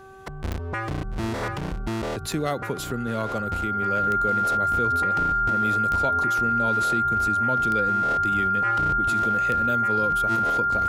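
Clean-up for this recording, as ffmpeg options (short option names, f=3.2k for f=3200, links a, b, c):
-af "adeclick=t=4,bandreject=f=384.5:t=h:w=4,bandreject=f=769:t=h:w=4,bandreject=f=1.1535k:t=h:w=4,bandreject=f=1.538k:t=h:w=4,bandreject=f=1.4k:w=30"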